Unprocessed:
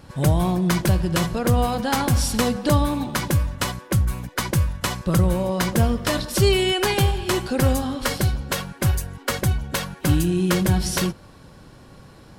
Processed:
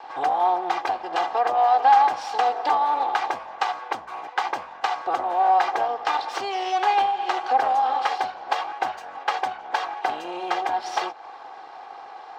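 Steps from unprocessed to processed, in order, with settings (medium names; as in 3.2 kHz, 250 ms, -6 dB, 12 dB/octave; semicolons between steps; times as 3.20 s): comb filter that takes the minimum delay 2.5 ms; compression 3:1, threshold -30 dBFS, peak gain reduction 12.5 dB; resonant high-pass 790 Hz, resonance Q 4.9; distance through air 190 m; trim +6.5 dB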